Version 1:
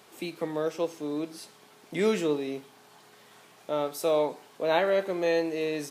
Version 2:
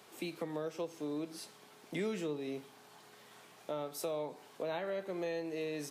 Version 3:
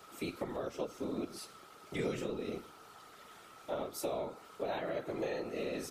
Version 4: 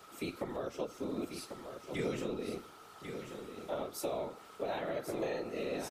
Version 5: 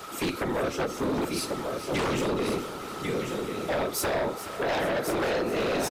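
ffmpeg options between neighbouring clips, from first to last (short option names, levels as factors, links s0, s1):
-filter_complex "[0:a]acrossover=split=150[s0][s1];[s1]acompressor=threshold=0.0224:ratio=5[s2];[s0][s2]amix=inputs=2:normalize=0,volume=0.708"
-af "aeval=exprs='val(0)+0.00141*sin(2*PI*1300*n/s)':c=same,afftfilt=real='hypot(re,im)*cos(2*PI*random(0))':imag='hypot(re,im)*sin(2*PI*random(1))':win_size=512:overlap=0.75,volume=2.11"
-af "aecho=1:1:1094:0.398"
-af "aeval=exprs='0.0668*sin(PI/2*3.55*val(0)/0.0668)':c=same,aecho=1:1:427|854|1281|1708|2135:0.224|0.116|0.0605|0.0315|0.0164"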